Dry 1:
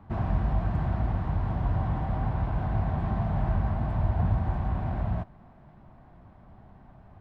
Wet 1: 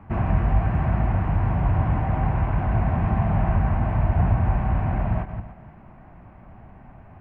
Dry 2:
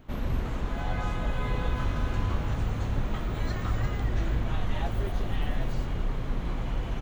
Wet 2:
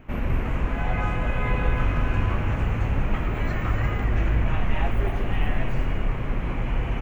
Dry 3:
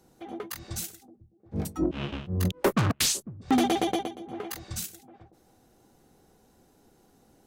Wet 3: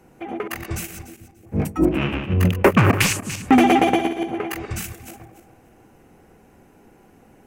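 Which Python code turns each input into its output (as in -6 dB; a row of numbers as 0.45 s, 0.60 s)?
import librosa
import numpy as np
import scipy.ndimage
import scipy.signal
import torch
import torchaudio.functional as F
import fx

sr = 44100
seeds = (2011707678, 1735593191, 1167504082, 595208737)

y = fx.reverse_delay_fb(x, sr, ms=146, feedback_pct=42, wet_db=-8.5)
y = fx.high_shelf_res(y, sr, hz=3100.0, db=-6.5, q=3.0)
y = y * 10.0 ** (-22 / 20.0) / np.sqrt(np.mean(np.square(y)))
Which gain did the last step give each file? +5.0 dB, +4.0 dB, +9.0 dB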